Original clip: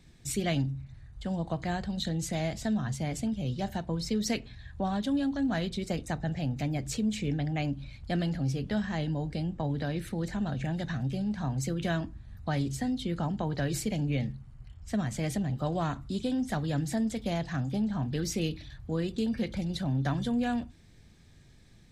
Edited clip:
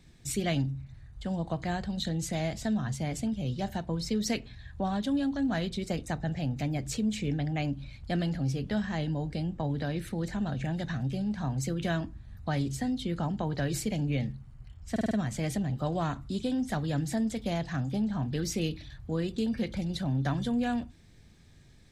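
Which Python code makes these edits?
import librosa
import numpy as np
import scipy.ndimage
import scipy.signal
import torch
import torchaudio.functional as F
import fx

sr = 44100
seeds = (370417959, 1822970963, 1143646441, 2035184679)

y = fx.edit(x, sr, fx.stutter(start_s=14.91, slice_s=0.05, count=5), tone=tone)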